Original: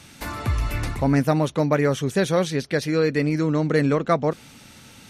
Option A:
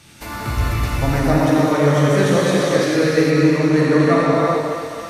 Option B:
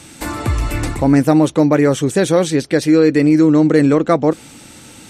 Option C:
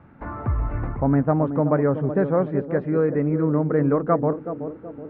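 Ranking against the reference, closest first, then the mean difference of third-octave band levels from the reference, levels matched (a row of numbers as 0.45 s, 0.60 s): B, A, C; 2.5 dB, 7.5 dB, 10.0 dB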